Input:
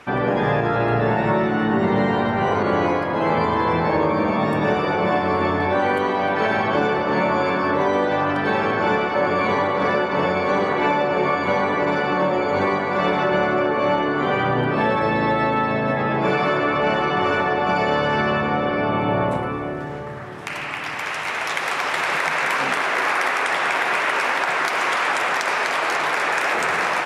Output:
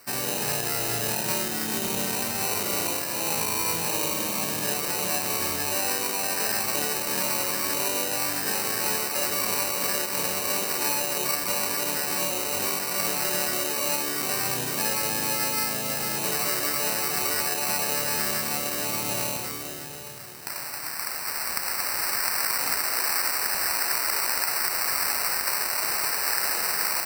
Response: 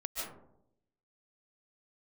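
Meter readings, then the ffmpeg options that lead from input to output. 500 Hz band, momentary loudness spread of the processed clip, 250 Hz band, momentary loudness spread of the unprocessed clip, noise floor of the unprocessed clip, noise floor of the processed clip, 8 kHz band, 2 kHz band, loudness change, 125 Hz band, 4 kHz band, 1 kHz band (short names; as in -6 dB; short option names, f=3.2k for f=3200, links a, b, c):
-13.0 dB, 3 LU, -13.5 dB, 2 LU, -28 dBFS, -34 dBFS, n/a, -9.0 dB, -4.0 dB, -13.5 dB, +2.0 dB, -12.0 dB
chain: -af "acrusher=samples=13:mix=1:aa=0.000001,crystalizer=i=5:c=0,volume=-13.5dB"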